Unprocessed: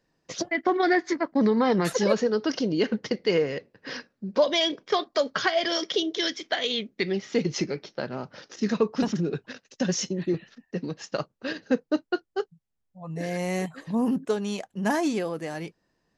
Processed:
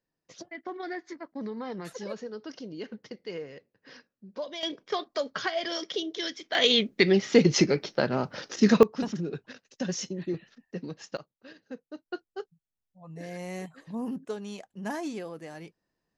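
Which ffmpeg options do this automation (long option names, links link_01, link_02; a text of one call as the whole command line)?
ffmpeg -i in.wav -af "asetnsamples=nb_out_samples=441:pad=0,asendcmd='4.63 volume volume -6dB;6.55 volume volume 6dB;8.83 volume volume -5.5dB;11.17 volume volume -17.5dB;12.06 volume volume -9dB',volume=-14.5dB" out.wav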